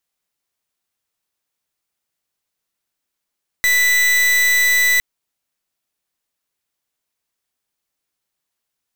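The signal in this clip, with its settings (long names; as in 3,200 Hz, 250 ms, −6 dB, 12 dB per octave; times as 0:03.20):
pulse wave 1,980 Hz, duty 40% −14.5 dBFS 1.36 s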